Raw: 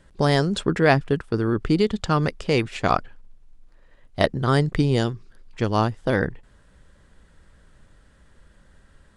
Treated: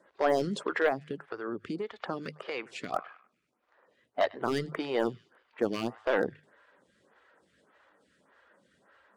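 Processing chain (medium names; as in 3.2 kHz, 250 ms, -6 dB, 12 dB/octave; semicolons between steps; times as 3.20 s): coarse spectral quantiser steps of 15 dB; high-pass 96 Hz 6 dB/octave; treble shelf 2.5 kHz -11 dB; peak limiter -12.5 dBFS, peak gain reduction 7.5 dB; hum notches 50/100/150 Hz; band-passed feedback delay 100 ms, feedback 57%, band-pass 2.3 kHz, level -22.5 dB; 0.88–2.93 s: compression 8:1, threshold -27 dBFS, peak gain reduction 9.5 dB; frequency weighting A; hard clipper -20 dBFS, distortion -14 dB; lamp-driven phase shifter 1.7 Hz; trim +4 dB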